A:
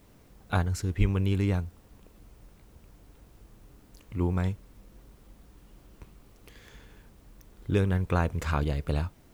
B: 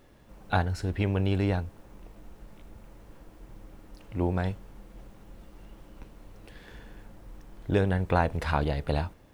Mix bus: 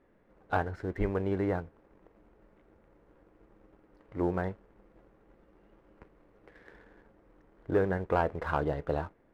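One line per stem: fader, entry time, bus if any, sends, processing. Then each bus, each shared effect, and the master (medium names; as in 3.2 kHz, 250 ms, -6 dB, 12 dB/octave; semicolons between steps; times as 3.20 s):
-7.0 dB, 0.00 s, no send, steep low-pass 2.3 kHz 36 dB/octave; flange 0.86 Hz, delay 4 ms, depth 2.5 ms, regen +61%
-1.5 dB, 0.00 s, no send, band-pass filter 390 Hz, Q 1.3; tilt EQ +1.5 dB/octave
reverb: none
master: peaking EQ 1.7 kHz +6 dB 1.2 oct; waveshaping leveller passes 1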